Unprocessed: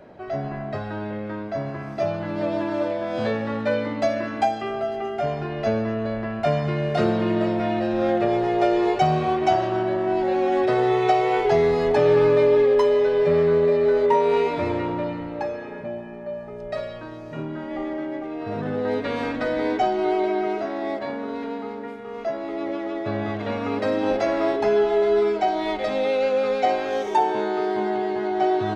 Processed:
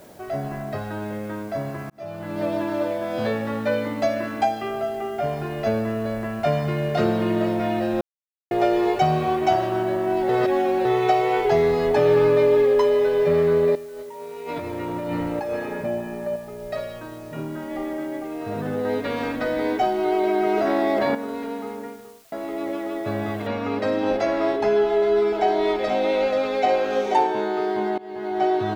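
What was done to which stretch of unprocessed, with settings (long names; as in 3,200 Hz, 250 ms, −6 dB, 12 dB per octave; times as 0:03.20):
0:01.90–0:02.43: fade in
0:04.89–0:05.33: high-frequency loss of the air 80 metres
0:08.01–0:08.51: silence
0:10.29–0:10.85: reverse
0:13.75–0:16.36: compressor whose output falls as the input rises −30 dBFS
0:20.12–0:21.15: envelope flattener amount 100%
0:21.75–0:22.32: fade out and dull
0:23.47: noise floor change −55 dB −67 dB
0:24.84–0:27.27: single-tap delay 483 ms −5 dB
0:27.98–0:28.41: fade in, from −22 dB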